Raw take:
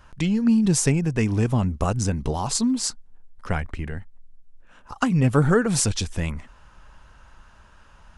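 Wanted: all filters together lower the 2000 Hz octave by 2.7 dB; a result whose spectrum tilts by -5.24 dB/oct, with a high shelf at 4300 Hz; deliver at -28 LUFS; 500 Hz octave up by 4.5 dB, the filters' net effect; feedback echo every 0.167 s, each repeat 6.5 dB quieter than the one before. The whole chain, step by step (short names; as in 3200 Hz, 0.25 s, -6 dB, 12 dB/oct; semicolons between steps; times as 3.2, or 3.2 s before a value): bell 500 Hz +5.5 dB; bell 2000 Hz -5 dB; high shelf 4300 Hz +3.5 dB; feedback echo 0.167 s, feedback 47%, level -6.5 dB; gain -7.5 dB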